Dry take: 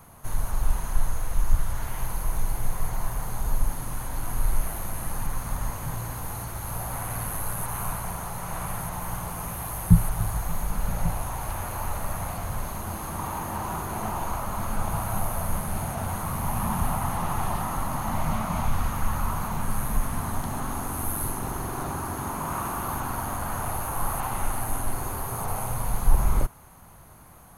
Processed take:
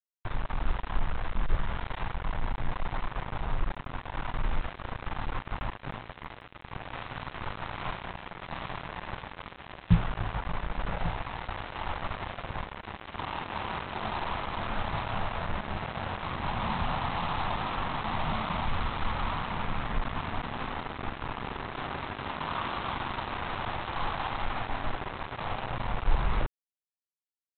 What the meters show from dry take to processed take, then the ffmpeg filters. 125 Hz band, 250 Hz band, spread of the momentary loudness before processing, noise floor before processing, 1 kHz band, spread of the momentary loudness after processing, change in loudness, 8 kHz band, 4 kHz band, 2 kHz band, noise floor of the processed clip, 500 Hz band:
-6.5 dB, -5.0 dB, 5 LU, -35 dBFS, -2.5 dB, 8 LU, -4.5 dB, under -40 dB, +4.5 dB, +2.0 dB, -58 dBFS, -2.0 dB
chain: -af "lowshelf=f=460:g=-5.5,aresample=8000,acrusher=bits=4:mix=0:aa=0.5,aresample=44100,volume=-1dB"

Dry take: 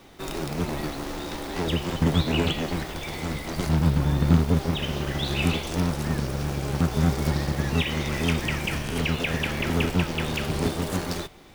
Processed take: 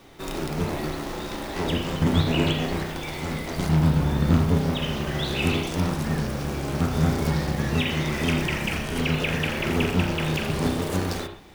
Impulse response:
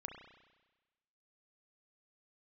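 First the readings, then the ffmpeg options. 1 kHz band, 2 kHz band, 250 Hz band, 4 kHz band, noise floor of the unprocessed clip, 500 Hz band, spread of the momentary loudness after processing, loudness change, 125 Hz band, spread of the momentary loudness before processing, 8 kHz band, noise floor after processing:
+1.5 dB, +1.5 dB, +1.5 dB, +0.5 dB, -35 dBFS, +1.5 dB, 9 LU, +1.0 dB, +0.5 dB, 9 LU, -0.5 dB, -33 dBFS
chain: -filter_complex "[1:a]atrim=start_sample=2205,afade=t=out:st=0.19:d=0.01,atrim=end_sample=8820[a];[0:a][a]afir=irnorm=-1:irlink=0,volume=5dB"

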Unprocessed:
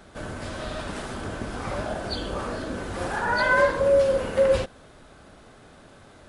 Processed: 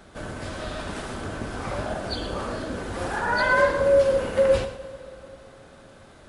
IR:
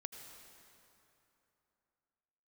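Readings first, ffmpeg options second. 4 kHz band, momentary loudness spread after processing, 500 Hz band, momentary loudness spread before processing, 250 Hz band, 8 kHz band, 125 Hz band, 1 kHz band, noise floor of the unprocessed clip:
+0.5 dB, 18 LU, +0.5 dB, 14 LU, 0.0 dB, +0.5 dB, +0.5 dB, +0.5 dB, -50 dBFS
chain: -filter_complex "[0:a]asplit=2[a][b];[1:a]atrim=start_sample=2205,adelay=113[c];[b][c]afir=irnorm=-1:irlink=0,volume=-7.5dB[d];[a][d]amix=inputs=2:normalize=0"

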